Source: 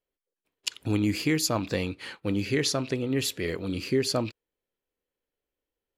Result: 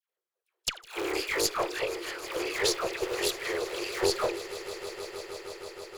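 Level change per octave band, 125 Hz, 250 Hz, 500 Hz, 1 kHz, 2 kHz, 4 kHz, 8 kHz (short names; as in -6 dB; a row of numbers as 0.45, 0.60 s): -19.0, -10.5, +0.5, +4.0, +1.5, 0.0, -0.5 dB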